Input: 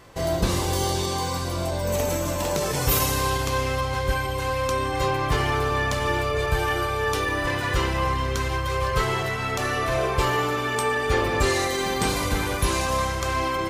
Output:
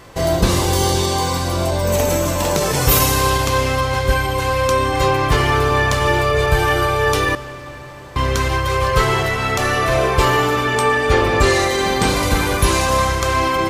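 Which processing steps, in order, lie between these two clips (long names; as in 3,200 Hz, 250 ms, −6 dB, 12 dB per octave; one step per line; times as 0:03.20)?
0:07.35–0:08.16: fill with room tone
0:10.64–0:12.23: high-shelf EQ 8,400 Hz −6.5 dB
convolution reverb RT60 4.7 s, pre-delay 75 ms, DRR 14.5 dB
level +7.5 dB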